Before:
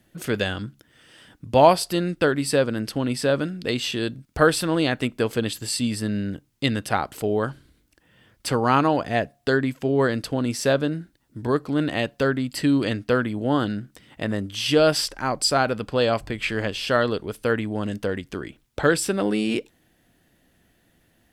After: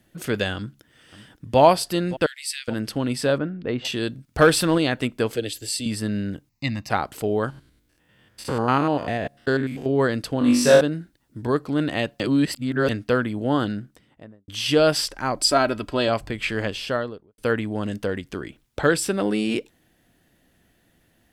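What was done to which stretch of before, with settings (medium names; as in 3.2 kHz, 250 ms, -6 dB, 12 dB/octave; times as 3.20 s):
0.55–1.59 s: echo throw 570 ms, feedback 60%, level -16 dB
2.26–2.68 s: elliptic high-pass 2 kHz, stop band 80 dB
3.38–3.85 s: low-pass 1.6 kHz
4.38–4.78 s: waveshaping leveller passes 1
5.36–5.86 s: static phaser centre 440 Hz, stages 4
6.49–6.90 s: static phaser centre 2.2 kHz, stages 8
7.50–9.86 s: spectrogram pixelated in time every 100 ms
10.39–10.81 s: flutter echo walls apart 3.5 m, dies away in 0.71 s
12.20–12.89 s: reverse
13.63–14.48 s: studio fade out
15.36–16.08 s: comb 3.1 ms
16.68–17.38 s: studio fade out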